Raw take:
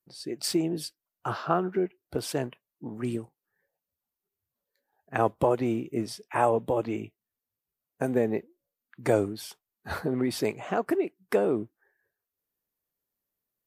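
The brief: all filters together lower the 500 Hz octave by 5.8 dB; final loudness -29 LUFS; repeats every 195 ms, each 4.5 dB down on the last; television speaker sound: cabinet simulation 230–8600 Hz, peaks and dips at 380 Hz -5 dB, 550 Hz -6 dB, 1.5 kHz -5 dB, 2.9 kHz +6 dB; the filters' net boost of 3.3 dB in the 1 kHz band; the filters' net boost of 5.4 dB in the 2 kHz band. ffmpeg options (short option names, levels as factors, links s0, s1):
-af "highpass=f=230:w=0.5412,highpass=f=230:w=1.3066,equalizer=f=380:t=q:w=4:g=-5,equalizer=f=550:t=q:w=4:g=-6,equalizer=f=1500:t=q:w=4:g=-5,equalizer=f=2900:t=q:w=4:g=6,lowpass=f=8600:w=0.5412,lowpass=f=8600:w=1.3066,equalizer=f=500:t=o:g=-4,equalizer=f=1000:t=o:g=5.5,equalizer=f=2000:t=o:g=7.5,aecho=1:1:195|390|585|780|975|1170|1365|1560|1755:0.596|0.357|0.214|0.129|0.0772|0.0463|0.0278|0.0167|0.01,volume=1.12"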